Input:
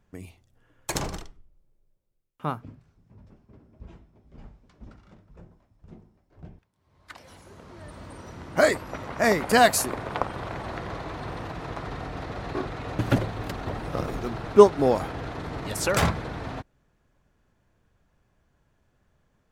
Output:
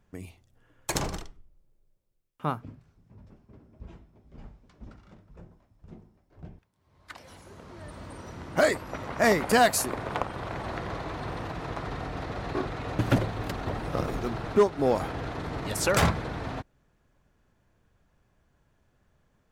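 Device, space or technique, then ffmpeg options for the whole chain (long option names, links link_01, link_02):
limiter into clipper: -af "alimiter=limit=-10dB:level=0:latency=1:release=448,asoftclip=type=hard:threshold=-13.5dB"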